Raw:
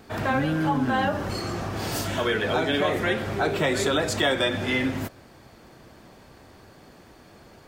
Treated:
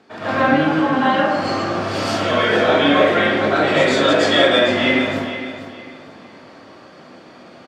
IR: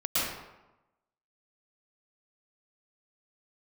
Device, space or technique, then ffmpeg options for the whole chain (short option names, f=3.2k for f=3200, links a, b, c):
supermarket ceiling speaker: -filter_complex "[0:a]asettb=1/sr,asplit=3[a][b][c];[a]atrim=end=0.564[d];[b]atrim=start=0.56:end=1.22,asetpts=PTS-STARTPTS,afade=t=in:d=0.004:c=qsin,afade=t=out:st=0.656:d=0.004:c=qsin,highpass=f=270:p=1[e];[c]atrim=start=1.216[f];[d][e]acrossfade=d=0.004:c1=hsin:c2=qsin[g];[g][f]acrossfade=d=0.004:c1=qsin:c2=hsin,highpass=210,lowpass=5.3k[h];[1:a]atrim=start_sample=2205[i];[h][i]afir=irnorm=-1:irlink=0,aecho=1:1:458|916|1374:0.282|0.0817|0.0237,volume=-1dB"